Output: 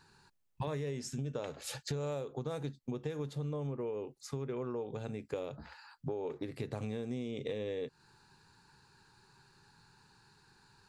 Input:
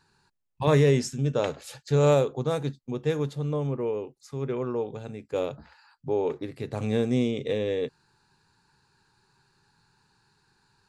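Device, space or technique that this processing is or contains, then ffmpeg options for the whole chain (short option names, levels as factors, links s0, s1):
serial compression, leveller first: -af "acompressor=threshold=0.0398:ratio=2,acompressor=threshold=0.0126:ratio=6,volume=1.33"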